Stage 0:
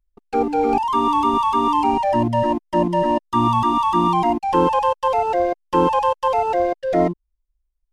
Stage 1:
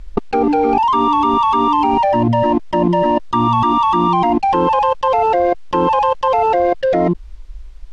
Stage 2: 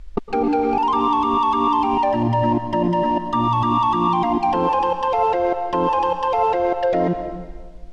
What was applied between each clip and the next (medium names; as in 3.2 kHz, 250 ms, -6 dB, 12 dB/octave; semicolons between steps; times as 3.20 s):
low-pass 4.6 kHz 12 dB/octave; level flattener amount 100%
plate-style reverb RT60 1.5 s, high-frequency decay 0.95×, pre-delay 100 ms, DRR 7.5 dB; trim -5 dB